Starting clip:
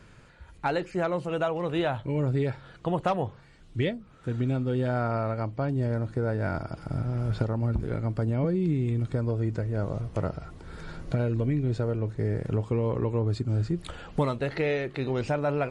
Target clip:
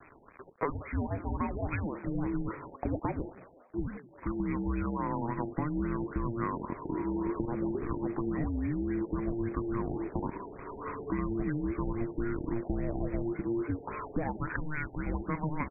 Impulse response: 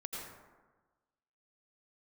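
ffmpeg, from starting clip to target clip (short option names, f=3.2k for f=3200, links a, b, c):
-filter_complex "[0:a]tiltshelf=f=820:g=-7.5,acompressor=threshold=-32dB:ratio=12,acrusher=bits=7:mix=0:aa=0.000001,asetrate=46722,aresample=44100,atempo=0.943874,afreqshift=-460,asplit=5[a][b][c][d][e];[b]adelay=185,afreqshift=120,volume=-18.5dB[f];[c]adelay=370,afreqshift=240,volume=-25.1dB[g];[d]adelay=555,afreqshift=360,volume=-31.6dB[h];[e]adelay=740,afreqshift=480,volume=-38.2dB[i];[a][f][g][h][i]amix=inputs=5:normalize=0,afftfilt=real='re*lt(b*sr/1024,890*pow(2600/890,0.5+0.5*sin(2*PI*3.6*pts/sr)))':imag='im*lt(b*sr/1024,890*pow(2600/890,0.5+0.5*sin(2*PI*3.6*pts/sr)))':win_size=1024:overlap=0.75,volume=4dB"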